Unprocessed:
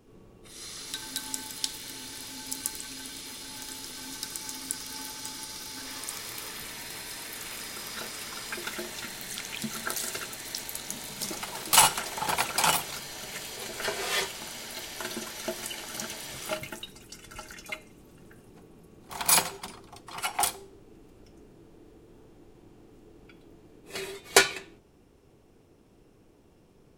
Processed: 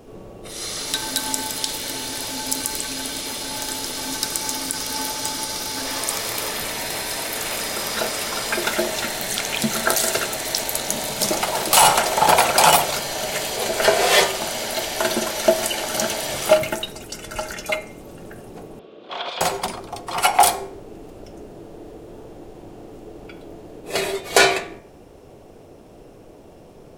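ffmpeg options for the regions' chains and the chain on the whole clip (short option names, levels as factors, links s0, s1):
-filter_complex "[0:a]asettb=1/sr,asplit=3[s0][s1][s2];[s0]atrim=end=18.794[s3];[s1]atrim=start=18.79:end=19.41,asetpts=PTS-STARTPTS,afade=t=in:d=0.004:c=qsin,afade=t=out:st=0.616:d=0.004:c=qsin,acompressor=threshold=0.0224:ratio=8:attack=3.2:release=140:knee=1:detection=peak,aeval=exprs='clip(val(0),-1,0.0075)':c=same,highpass=370,equalizer=f=830:t=q:w=4:g=-9,equalizer=f=1900:t=q:w=4:g=-5,equalizer=f=3400:t=q:w=4:g=9,lowpass=f=3800:w=0.5412,lowpass=f=3800:w=1.3066[s4];[s2]atrim=start=19.406[s5];[s3][s4]acrossfade=d=0.004:c1=hsin:c2=qsin[s6];[s6][s5]acrossfade=d=0.004:c1=qsin:c2=hsin,equalizer=f=620:w=1.6:g=10,bandreject=f=64.07:t=h:w=4,bandreject=f=128.14:t=h:w=4,bandreject=f=192.21:t=h:w=4,bandreject=f=256.28:t=h:w=4,bandreject=f=320.35:t=h:w=4,bandreject=f=384.42:t=h:w=4,bandreject=f=448.49:t=h:w=4,bandreject=f=512.56:t=h:w=4,bandreject=f=576.63:t=h:w=4,bandreject=f=640.7:t=h:w=4,bandreject=f=704.77:t=h:w=4,bandreject=f=768.84:t=h:w=4,bandreject=f=832.91:t=h:w=4,bandreject=f=896.98:t=h:w=4,bandreject=f=961.05:t=h:w=4,bandreject=f=1025.12:t=h:w=4,bandreject=f=1089.19:t=h:w=4,bandreject=f=1153.26:t=h:w=4,bandreject=f=1217.33:t=h:w=4,bandreject=f=1281.4:t=h:w=4,bandreject=f=1345.47:t=h:w=4,bandreject=f=1409.54:t=h:w=4,bandreject=f=1473.61:t=h:w=4,bandreject=f=1537.68:t=h:w=4,bandreject=f=1601.75:t=h:w=4,bandreject=f=1665.82:t=h:w=4,bandreject=f=1729.89:t=h:w=4,bandreject=f=1793.96:t=h:w=4,bandreject=f=1858.03:t=h:w=4,bandreject=f=1922.1:t=h:w=4,bandreject=f=1986.17:t=h:w=4,bandreject=f=2050.24:t=h:w=4,bandreject=f=2114.31:t=h:w=4,bandreject=f=2178.38:t=h:w=4,bandreject=f=2242.45:t=h:w=4,bandreject=f=2306.52:t=h:w=4,bandreject=f=2370.59:t=h:w=4,bandreject=f=2434.66:t=h:w=4,alimiter=level_in=4.47:limit=0.891:release=50:level=0:latency=1,volume=0.891"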